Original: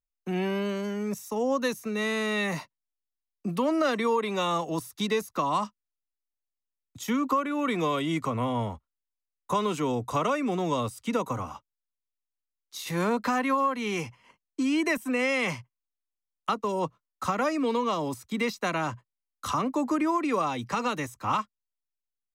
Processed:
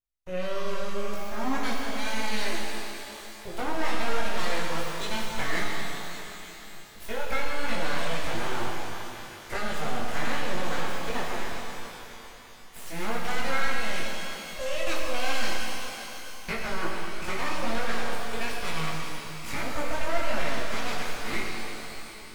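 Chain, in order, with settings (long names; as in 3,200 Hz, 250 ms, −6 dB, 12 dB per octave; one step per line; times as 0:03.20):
full-wave rectification
multi-voice chorus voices 2, 0.45 Hz, delay 20 ms, depth 2.5 ms
reverb with rising layers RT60 3.5 s, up +12 semitones, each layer −8 dB, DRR −1.5 dB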